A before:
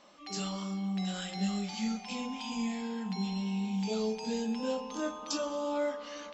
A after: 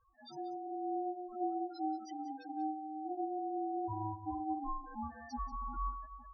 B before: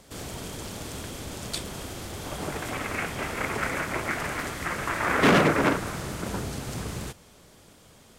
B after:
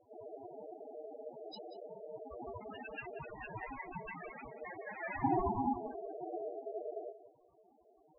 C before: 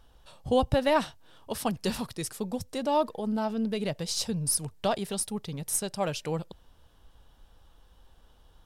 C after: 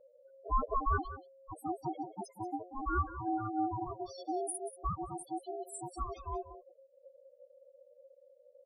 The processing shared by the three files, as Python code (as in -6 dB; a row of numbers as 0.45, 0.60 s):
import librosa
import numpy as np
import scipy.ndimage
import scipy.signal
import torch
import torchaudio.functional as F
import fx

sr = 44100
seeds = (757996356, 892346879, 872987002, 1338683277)

y = fx.spec_topn(x, sr, count=2)
y = y * np.sin(2.0 * np.pi * 540.0 * np.arange(len(y)) / sr)
y = y + 10.0 ** (-14.0 / 20.0) * np.pad(y, (int(186 * sr / 1000.0), 0))[:len(y)]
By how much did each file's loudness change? -5.5, -14.0, -8.0 LU